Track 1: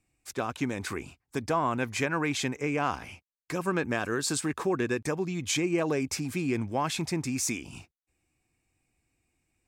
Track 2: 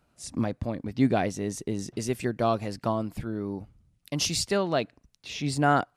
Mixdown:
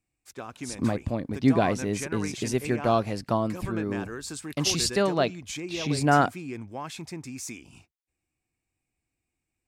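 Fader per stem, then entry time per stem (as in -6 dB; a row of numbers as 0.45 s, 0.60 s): -7.5 dB, +2.0 dB; 0.00 s, 0.45 s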